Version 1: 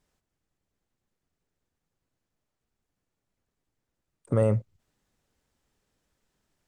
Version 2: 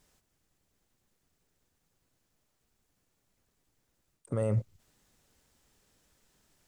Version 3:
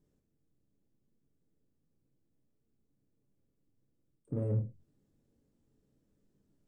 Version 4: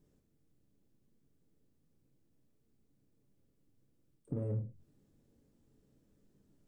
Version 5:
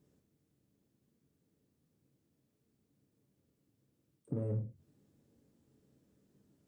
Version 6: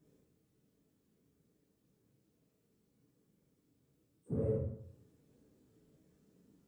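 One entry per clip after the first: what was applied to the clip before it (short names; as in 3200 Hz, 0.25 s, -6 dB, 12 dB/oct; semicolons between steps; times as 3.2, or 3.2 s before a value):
high shelf 3900 Hz +6.5 dB; reverse; compressor 16:1, threshold -30 dBFS, peak gain reduction 13.5 dB; reverse; gain +5 dB
EQ curve 100 Hz 0 dB, 270 Hz +6 dB, 510 Hz -2 dB, 740 Hz -11 dB, 2300 Hz -18 dB; non-linear reverb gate 0.14 s falling, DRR 2 dB; in parallel at -6.5 dB: soft clip -32 dBFS, distortion -6 dB; on the sum: gain -8 dB
compressor 2.5:1, threshold -41 dBFS, peak gain reduction 9.5 dB; gain +4 dB
HPF 77 Hz; gain +1 dB
phase scrambler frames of 50 ms; plate-style reverb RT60 0.69 s, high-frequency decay 0.75×, pre-delay 0 ms, DRR -1.5 dB; gain -1.5 dB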